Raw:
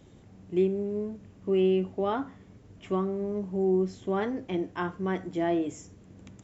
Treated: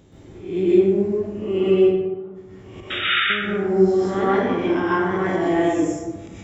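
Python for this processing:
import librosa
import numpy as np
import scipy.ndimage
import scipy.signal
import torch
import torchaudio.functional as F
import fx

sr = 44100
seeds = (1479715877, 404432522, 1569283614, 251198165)

y = fx.spec_swells(x, sr, rise_s=0.62)
y = fx.gate_flip(y, sr, shuts_db=-31.0, range_db=-38, at=(1.74, 3.3))
y = fx.spec_paint(y, sr, seeds[0], shape='noise', start_s=2.9, length_s=0.3, low_hz=1200.0, high_hz=3800.0, level_db=-27.0)
y = fx.rev_plate(y, sr, seeds[1], rt60_s=1.3, hf_ratio=0.45, predelay_ms=115, drr_db=-8.5)
y = fx.end_taper(y, sr, db_per_s=510.0)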